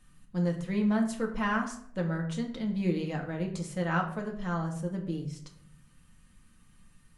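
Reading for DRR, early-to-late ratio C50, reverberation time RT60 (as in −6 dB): 0.5 dB, 9.0 dB, 0.65 s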